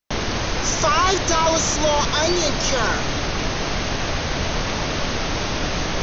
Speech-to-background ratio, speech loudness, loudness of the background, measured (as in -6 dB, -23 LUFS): 3.0 dB, -20.5 LUFS, -23.5 LUFS